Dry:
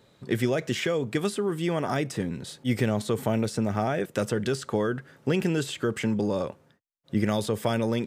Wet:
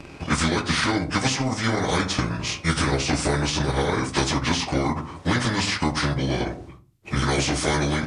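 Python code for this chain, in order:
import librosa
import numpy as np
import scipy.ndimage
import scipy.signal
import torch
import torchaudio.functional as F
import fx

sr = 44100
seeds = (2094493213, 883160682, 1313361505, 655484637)

y = fx.pitch_bins(x, sr, semitones=-7.5)
y = fx.room_shoebox(y, sr, seeds[0], volume_m3=180.0, walls='furnished', distance_m=0.59)
y = fx.transient(y, sr, attack_db=5, sustain_db=-3)
y = fx.spectral_comp(y, sr, ratio=2.0)
y = y * librosa.db_to_amplitude(1.5)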